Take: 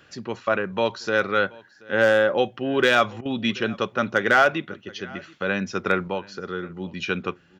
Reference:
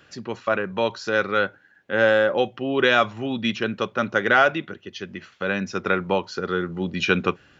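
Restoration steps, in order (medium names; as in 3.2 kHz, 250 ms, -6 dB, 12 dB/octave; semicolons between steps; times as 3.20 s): clip repair -7.5 dBFS; interpolate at 3.21 s, 43 ms; inverse comb 730 ms -23.5 dB; trim 0 dB, from 6.08 s +6 dB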